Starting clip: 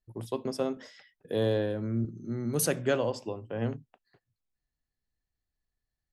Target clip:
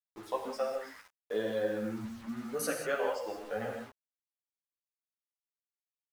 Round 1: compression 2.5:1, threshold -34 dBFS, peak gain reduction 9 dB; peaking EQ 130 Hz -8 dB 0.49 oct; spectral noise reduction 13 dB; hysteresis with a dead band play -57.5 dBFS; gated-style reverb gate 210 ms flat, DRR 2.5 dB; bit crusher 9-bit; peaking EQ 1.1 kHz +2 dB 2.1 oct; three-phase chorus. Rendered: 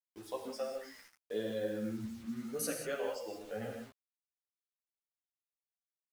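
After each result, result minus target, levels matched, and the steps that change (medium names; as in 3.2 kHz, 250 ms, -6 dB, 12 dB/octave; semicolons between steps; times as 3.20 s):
1 kHz band -5.0 dB; hysteresis with a dead band: distortion -6 dB
change: second peaking EQ 1.1 kHz +12 dB 2.1 oct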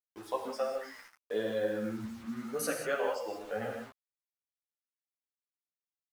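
hysteresis with a dead band: distortion -6 dB
change: hysteresis with a dead band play -50.5 dBFS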